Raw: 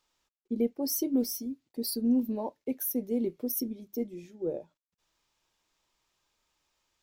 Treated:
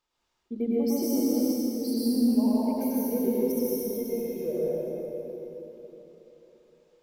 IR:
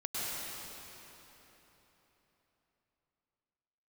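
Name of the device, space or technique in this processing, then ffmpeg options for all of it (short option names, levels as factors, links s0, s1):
swimming-pool hall: -filter_complex "[0:a]asettb=1/sr,asplit=3[s0][s1][s2];[s0]atrim=end=3.144[s3];[s1]atrim=start=3.14:end=4.53,asetpts=PTS-STARTPTS,afade=t=in:d=0.004:c=qsin,afade=t=out:st=1.386:d=0.004:c=qsin,aecho=1:1:1.9:0.72,atrim=end_sample=61299[s4];[s2]atrim=start=4.526[s5];[s3][s4]acrossfade=d=0.004:c1=hsin:c2=qsin[s6];[s6][s5]acrossfade=d=0.004:c1=qsin:c2=hsin[s7];[1:a]atrim=start_sample=2205[s8];[s7][s8]afir=irnorm=-1:irlink=0,highshelf=f=4100:g=-7"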